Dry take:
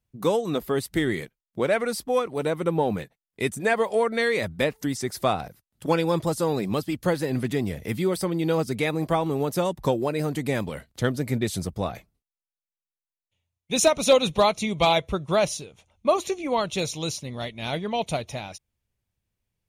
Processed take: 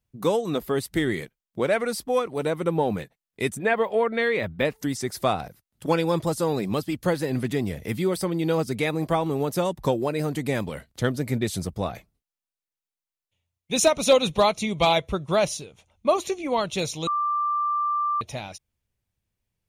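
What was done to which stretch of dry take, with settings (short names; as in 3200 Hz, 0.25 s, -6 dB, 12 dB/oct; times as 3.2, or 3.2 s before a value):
3.57–4.65 band shelf 7500 Hz -14.5 dB
17.07–18.21 bleep 1180 Hz -21.5 dBFS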